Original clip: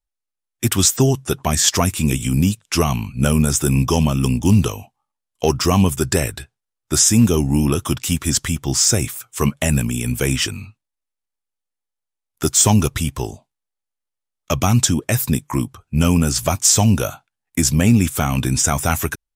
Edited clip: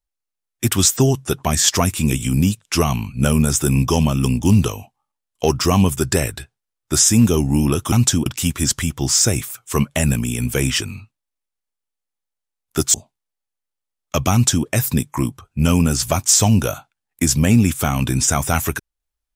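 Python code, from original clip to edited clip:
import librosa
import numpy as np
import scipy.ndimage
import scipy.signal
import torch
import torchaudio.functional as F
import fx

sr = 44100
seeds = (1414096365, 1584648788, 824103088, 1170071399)

y = fx.edit(x, sr, fx.cut(start_s=12.6, length_s=0.7),
    fx.duplicate(start_s=14.68, length_s=0.34, to_s=7.92), tone=tone)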